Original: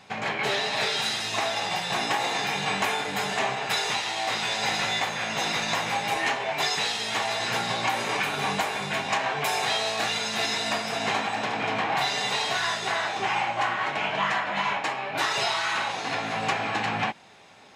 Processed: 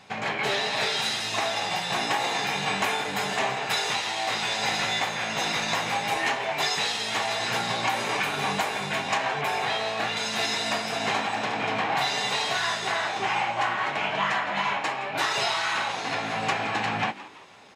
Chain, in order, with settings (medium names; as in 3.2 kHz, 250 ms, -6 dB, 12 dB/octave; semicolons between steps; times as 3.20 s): 9.41–10.17 s: tone controls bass +1 dB, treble -10 dB; frequency-shifting echo 168 ms, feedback 44%, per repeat +86 Hz, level -16.5 dB